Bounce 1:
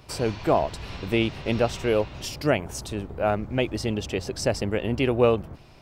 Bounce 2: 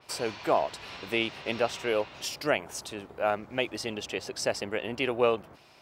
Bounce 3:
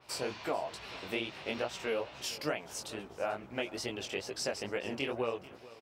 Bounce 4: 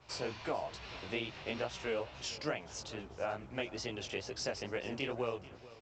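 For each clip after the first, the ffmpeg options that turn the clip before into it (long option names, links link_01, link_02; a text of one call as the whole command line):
ffmpeg -i in.wav -af "highpass=frequency=730:poles=1,adynamicequalizer=threshold=0.00631:dfrequency=4300:dqfactor=0.7:tfrequency=4300:tqfactor=0.7:attack=5:release=100:ratio=0.375:range=2:mode=cutabove:tftype=highshelf" out.wav
ffmpeg -i in.wav -af "acompressor=threshold=-27dB:ratio=6,flanger=delay=15.5:depth=7:speed=2.3,aecho=1:1:438|876|1314:0.112|0.0426|0.0162" out.wav
ffmpeg -i in.wav -filter_complex "[0:a]acrossover=split=110[link_01][link_02];[link_01]aeval=exprs='0.00398*sin(PI/2*2.51*val(0)/0.00398)':channel_layout=same[link_03];[link_03][link_02]amix=inputs=2:normalize=0,volume=-2.5dB" -ar 16000 -c:a pcm_mulaw out.wav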